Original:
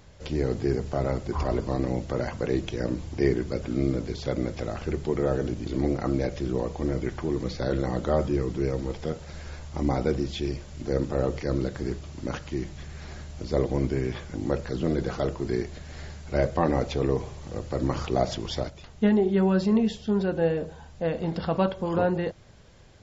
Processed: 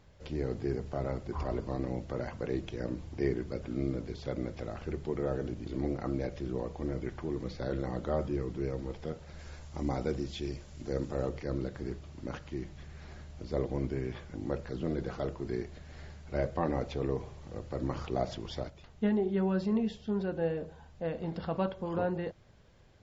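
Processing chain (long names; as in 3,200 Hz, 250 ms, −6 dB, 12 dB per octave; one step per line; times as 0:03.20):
high-shelf EQ 6,700 Hz −10 dB, from 0:09.39 +2.5 dB, from 0:11.29 −10.5 dB
level −7.5 dB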